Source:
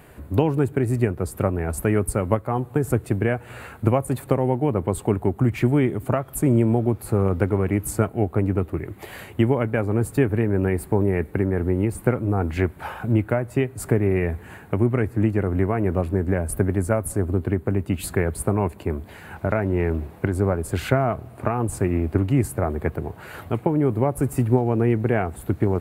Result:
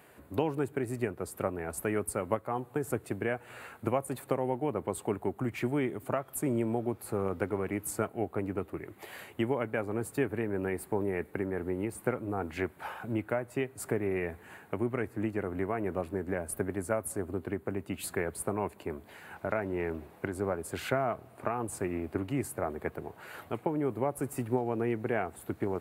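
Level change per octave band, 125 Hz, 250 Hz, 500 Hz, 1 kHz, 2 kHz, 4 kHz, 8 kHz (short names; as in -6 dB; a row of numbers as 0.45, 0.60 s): -17.0 dB, -11.0 dB, -9.0 dB, -7.0 dB, -6.5 dB, n/a, -6.5 dB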